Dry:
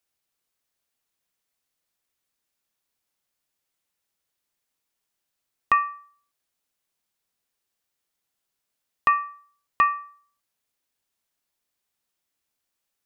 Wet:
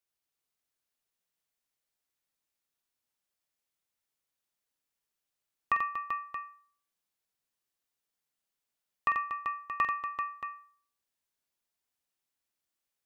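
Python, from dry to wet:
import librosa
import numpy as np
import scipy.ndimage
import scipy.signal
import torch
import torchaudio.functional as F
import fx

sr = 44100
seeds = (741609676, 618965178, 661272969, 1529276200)

y = fx.echo_multitap(x, sr, ms=(47, 88, 238, 388, 627), db=(-9.0, -6.5, -10.5, -7.0, -11.0))
y = y * 10.0 ** (-8.5 / 20.0)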